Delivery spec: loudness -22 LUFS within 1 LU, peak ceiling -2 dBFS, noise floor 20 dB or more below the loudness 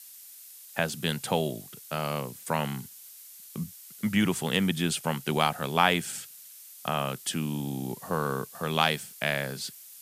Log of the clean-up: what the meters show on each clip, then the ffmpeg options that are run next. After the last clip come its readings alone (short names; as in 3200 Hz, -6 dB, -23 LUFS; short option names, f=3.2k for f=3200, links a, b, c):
noise floor -49 dBFS; noise floor target -50 dBFS; loudness -29.5 LUFS; peak -4.5 dBFS; loudness target -22.0 LUFS
-> -af "afftdn=nr=6:nf=-49"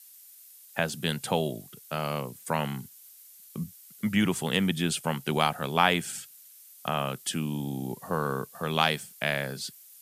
noise floor -52 dBFS; loudness -29.5 LUFS; peak -4.5 dBFS; loudness target -22.0 LUFS
-> -af "volume=7.5dB,alimiter=limit=-2dB:level=0:latency=1"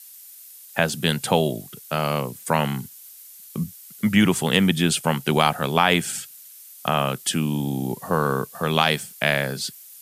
loudness -22.5 LUFS; peak -2.0 dBFS; noise floor -45 dBFS